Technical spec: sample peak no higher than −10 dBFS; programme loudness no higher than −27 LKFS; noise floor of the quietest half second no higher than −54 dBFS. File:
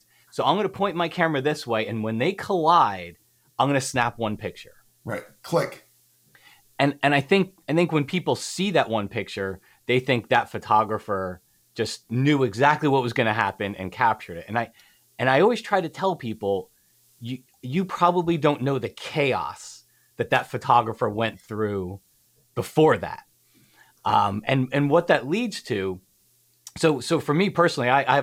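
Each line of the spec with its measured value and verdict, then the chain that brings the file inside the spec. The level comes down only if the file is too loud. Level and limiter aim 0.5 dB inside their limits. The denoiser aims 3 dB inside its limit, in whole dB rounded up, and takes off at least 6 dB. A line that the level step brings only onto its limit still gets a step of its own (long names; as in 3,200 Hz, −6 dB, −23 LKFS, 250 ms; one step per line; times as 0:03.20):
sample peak −5.5 dBFS: out of spec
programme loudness −23.5 LKFS: out of spec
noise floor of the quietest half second −63 dBFS: in spec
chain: level −4 dB
brickwall limiter −10.5 dBFS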